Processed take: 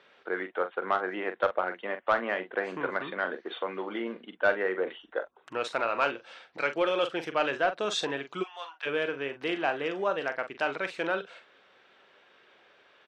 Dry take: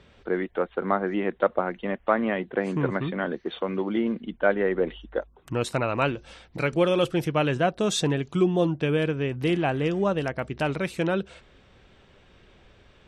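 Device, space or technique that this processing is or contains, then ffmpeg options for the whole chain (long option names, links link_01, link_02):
intercom: -filter_complex "[0:a]highpass=490,lowpass=4800,equalizer=frequency=1500:width_type=o:width=0.58:gain=4,asoftclip=type=tanh:threshold=-12dB,asplit=2[link_01][link_02];[link_02]adelay=43,volume=-10dB[link_03];[link_01][link_03]amix=inputs=2:normalize=0,asplit=3[link_04][link_05][link_06];[link_04]afade=type=out:start_time=8.42:duration=0.02[link_07];[link_05]highpass=frequency=940:width=0.5412,highpass=frequency=940:width=1.3066,afade=type=in:start_time=8.42:duration=0.02,afade=type=out:start_time=8.85:duration=0.02[link_08];[link_06]afade=type=in:start_time=8.85:duration=0.02[link_09];[link_07][link_08][link_09]amix=inputs=3:normalize=0,volume=-1.5dB"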